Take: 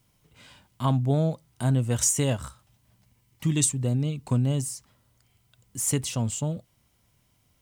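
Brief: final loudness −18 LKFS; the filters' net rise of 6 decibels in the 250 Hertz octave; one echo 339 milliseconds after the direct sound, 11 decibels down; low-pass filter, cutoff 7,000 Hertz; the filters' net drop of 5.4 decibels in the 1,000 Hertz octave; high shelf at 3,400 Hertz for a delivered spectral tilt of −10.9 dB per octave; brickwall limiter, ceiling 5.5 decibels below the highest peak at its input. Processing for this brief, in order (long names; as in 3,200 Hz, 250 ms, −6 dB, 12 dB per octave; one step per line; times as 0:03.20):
low-pass filter 7,000 Hz
parametric band 250 Hz +8 dB
parametric band 1,000 Hz −7 dB
high-shelf EQ 3,400 Hz −7.5 dB
brickwall limiter −16 dBFS
single-tap delay 339 ms −11 dB
level +8.5 dB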